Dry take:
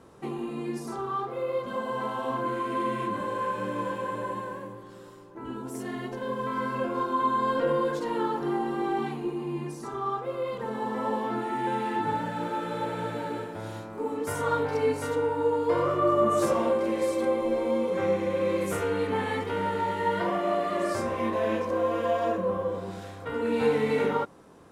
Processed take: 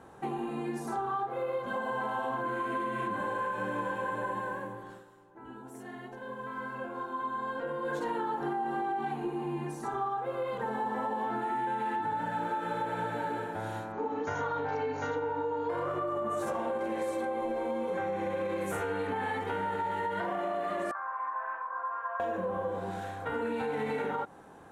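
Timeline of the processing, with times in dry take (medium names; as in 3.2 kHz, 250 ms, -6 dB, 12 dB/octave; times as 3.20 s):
4.91–7.96 s: dip -9.5 dB, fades 0.14 s
13.92–15.70 s: brick-wall FIR low-pass 7 kHz
20.91–22.20 s: Butterworth band-pass 1.2 kHz, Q 2.2
whole clip: graphic EQ with 31 bands 800 Hz +11 dB, 1.6 kHz +8 dB, 5 kHz -7 dB; peak limiter -18 dBFS; compression, threshold -28 dBFS; trim -1.5 dB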